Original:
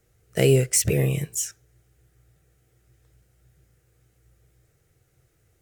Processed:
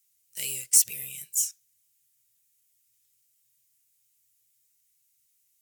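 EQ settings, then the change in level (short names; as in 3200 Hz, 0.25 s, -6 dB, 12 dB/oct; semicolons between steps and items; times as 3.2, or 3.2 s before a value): HPF 53 Hz; differentiator; band shelf 730 Hz -11 dB 2.9 oct; +1.5 dB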